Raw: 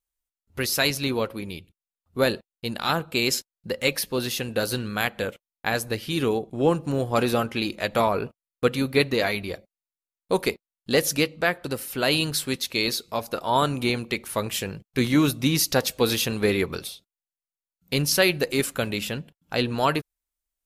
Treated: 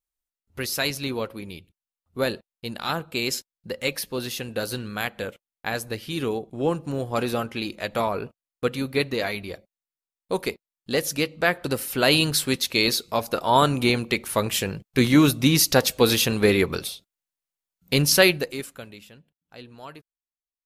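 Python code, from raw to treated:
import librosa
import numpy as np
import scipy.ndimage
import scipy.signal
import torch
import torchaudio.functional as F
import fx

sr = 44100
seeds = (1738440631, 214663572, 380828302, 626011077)

y = fx.gain(x, sr, db=fx.line((11.14, -3.0), (11.6, 3.5), (18.26, 3.5), (18.59, -9.0), (19.1, -19.0)))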